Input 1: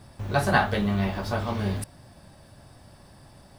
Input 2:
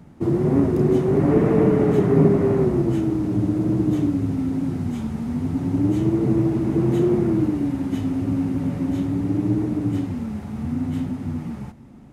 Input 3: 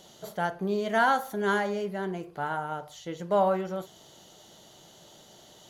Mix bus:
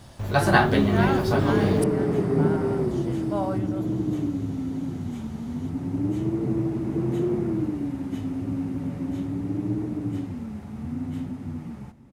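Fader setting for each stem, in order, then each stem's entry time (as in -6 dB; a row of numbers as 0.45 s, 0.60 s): +2.5 dB, -6.0 dB, -5.5 dB; 0.00 s, 0.20 s, 0.00 s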